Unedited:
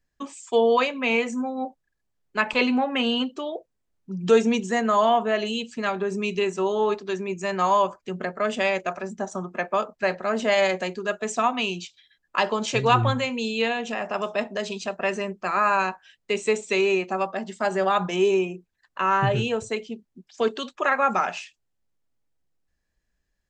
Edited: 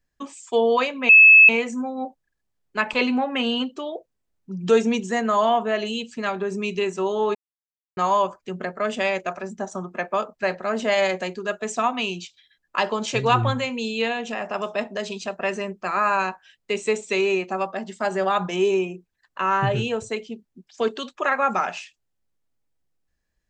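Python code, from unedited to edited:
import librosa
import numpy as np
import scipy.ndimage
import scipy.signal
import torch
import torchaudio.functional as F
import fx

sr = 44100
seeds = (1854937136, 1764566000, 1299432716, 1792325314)

y = fx.edit(x, sr, fx.insert_tone(at_s=1.09, length_s=0.4, hz=2600.0, db=-6.5),
    fx.silence(start_s=6.95, length_s=0.62), tone=tone)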